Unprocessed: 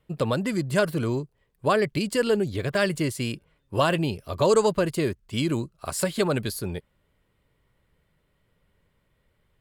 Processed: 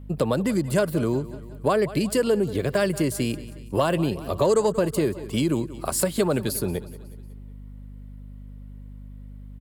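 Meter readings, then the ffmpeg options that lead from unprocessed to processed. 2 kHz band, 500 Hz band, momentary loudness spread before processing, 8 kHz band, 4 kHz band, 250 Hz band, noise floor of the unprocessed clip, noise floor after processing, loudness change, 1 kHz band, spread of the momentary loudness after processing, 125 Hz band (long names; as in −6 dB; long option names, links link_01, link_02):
−3.0 dB, +1.5 dB, 10 LU, +4.0 dB, −2.0 dB, +2.5 dB, −71 dBFS, −40 dBFS, +1.0 dB, −0.5 dB, 21 LU, +1.0 dB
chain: -filter_complex "[0:a]aecho=1:1:183|366|549|732:0.112|0.0539|0.0259|0.0124,acrossover=split=140|1100[link_01][link_02][link_03];[link_02]acontrast=88[link_04];[link_03]highshelf=frequency=7800:gain=11[link_05];[link_01][link_04][link_05]amix=inputs=3:normalize=0,aeval=exprs='val(0)+0.0112*(sin(2*PI*50*n/s)+sin(2*PI*2*50*n/s)/2+sin(2*PI*3*50*n/s)/3+sin(2*PI*4*50*n/s)/4+sin(2*PI*5*50*n/s)/5)':channel_layout=same,acompressor=threshold=-22dB:ratio=2"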